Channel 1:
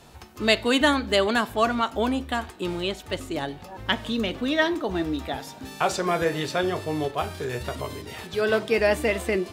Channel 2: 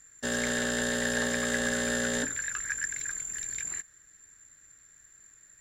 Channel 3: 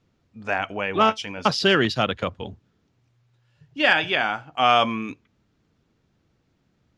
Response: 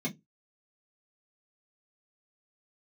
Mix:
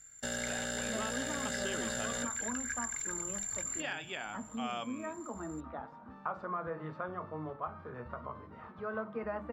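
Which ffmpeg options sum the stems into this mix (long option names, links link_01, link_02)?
-filter_complex "[0:a]lowpass=frequency=1200:width_type=q:width=4.6,adelay=450,volume=-14dB,asplit=2[link_01][link_02];[link_02]volume=-14dB[link_03];[1:a]aecho=1:1:1.4:0.6,volume=-3.5dB[link_04];[2:a]volume=-16.5dB,asplit=2[link_05][link_06];[link_06]apad=whole_len=439893[link_07];[link_01][link_07]sidechaincompress=threshold=-42dB:ratio=8:attack=16:release=729[link_08];[3:a]atrim=start_sample=2205[link_09];[link_03][link_09]afir=irnorm=-1:irlink=0[link_10];[link_08][link_04][link_05][link_10]amix=inputs=4:normalize=0,acompressor=threshold=-37dB:ratio=2"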